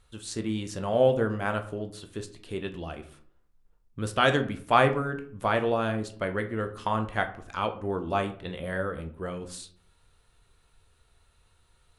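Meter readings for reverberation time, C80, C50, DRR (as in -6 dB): 0.55 s, 17.0 dB, 13.0 dB, 6.0 dB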